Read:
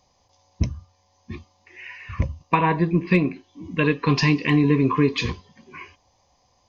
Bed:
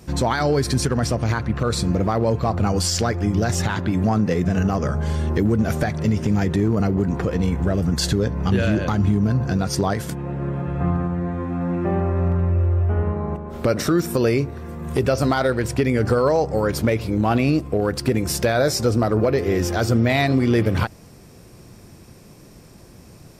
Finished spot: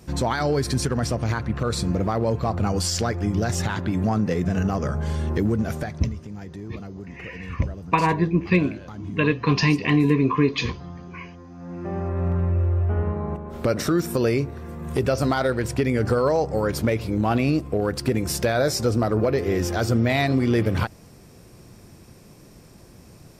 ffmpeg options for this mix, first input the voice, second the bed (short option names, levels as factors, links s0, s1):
-filter_complex "[0:a]adelay=5400,volume=0.944[s0];[1:a]volume=3.76,afade=t=out:st=5.48:d=0.69:silence=0.199526,afade=t=in:st=11.56:d=0.81:silence=0.188365[s1];[s0][s1]amix=inputs=2:normalize=0"